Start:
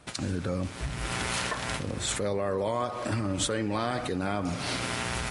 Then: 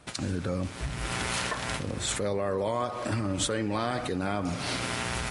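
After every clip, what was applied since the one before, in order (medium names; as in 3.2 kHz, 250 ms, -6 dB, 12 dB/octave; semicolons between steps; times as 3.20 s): no audible change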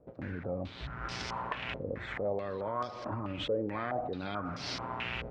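distance through air 75 m; step-sequenced low-pass 4.6 Hz 510–5300 Hz; trim -8.5 dB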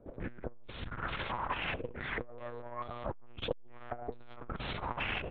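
feedback delay 76 ms, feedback 56%, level -21 dB; monotone LPC vocoder at 8 kHz 120 Hz; transformer saturation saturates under 310 Hz; trim +3.5 dB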